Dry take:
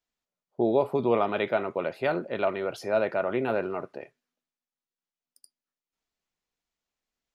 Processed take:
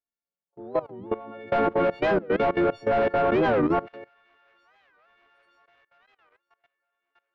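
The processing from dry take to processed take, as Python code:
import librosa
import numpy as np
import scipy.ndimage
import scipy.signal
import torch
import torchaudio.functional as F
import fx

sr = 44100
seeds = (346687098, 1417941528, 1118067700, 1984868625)

y = fx.freq_snap(x, sr, grid_st=4)
y = fx.leveller(y, sr, passes=3, at=(1.52, 3.94))
y = fx.high_shelf(y, sr, hz=2600.0, db=-9.5)
y = fx.echo_wet_highpass(y, sr, ms=921, feedback_pct=60, hz=1600.0, wet_db=-17)
y = fx.leveller(y, sr, passes=1)
y = fx.level_steps(y, sr, step_db=19)
y = fx.spacing_loss(y, sr, db_at_10k=33)
y = fx.record_warp(y, sr, rpm=45.0, depth_cents=250.0)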